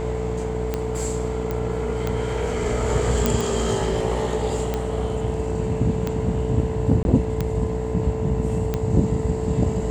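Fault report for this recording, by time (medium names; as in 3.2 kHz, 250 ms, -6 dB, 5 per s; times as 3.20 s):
buzz 60 Hz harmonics 17 -28 dBFS
tick 45 rpm -11 dBFS
whine 440 Hz -27 dBFS
1.51 s: pop -14 dBFS
3.26 s: pop
7.03–7.05 s: dropout 21 ms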